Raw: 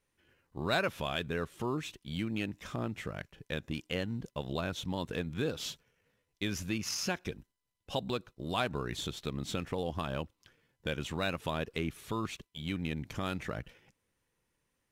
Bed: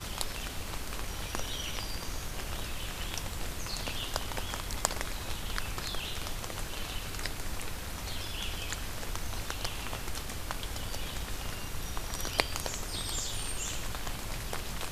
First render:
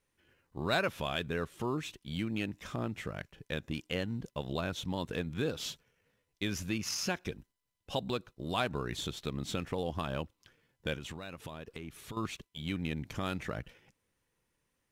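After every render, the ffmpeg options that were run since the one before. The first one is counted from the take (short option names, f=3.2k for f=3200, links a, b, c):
-filter_complex "[0:a]asettb=1/sr,asplit=3[a][b][c];[a]atrim=end=10.964[d];[b]atrim=start=10.96:end=12.17,asetpts=PTS-STARTPTS,afade=t=in:d=0.004:c=qsin,afade=t=out:st=1.206:d=0.004:c=qsin,acompressor=threshold=-38dB:ratio=12:attack=3.2:release=140:knee=1:detection=peak[e];[c]atrim=start=12.166[f];[d][e]acrossfade=d=0.004:c1=hsin:c2=qsin[g];[g][f]acrossfade=d=0.004:c1=qsin:c2=hsin"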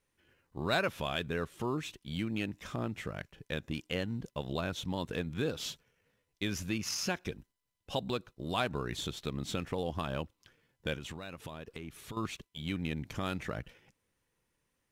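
-af anull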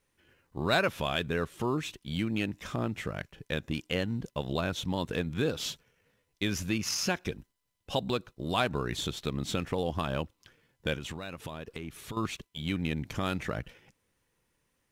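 -af "volume=4dB"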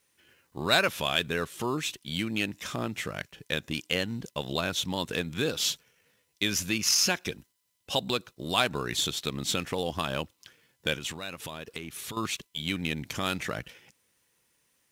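-af "highpass=f=120:p=1,highshelf=f=2.3k:g=10"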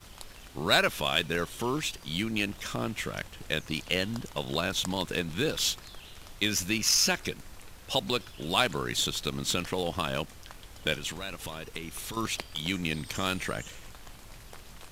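-filter_complex "[1:a]volume=-11dB[a];[0:a][a]amix=inputs=2:normalize=0"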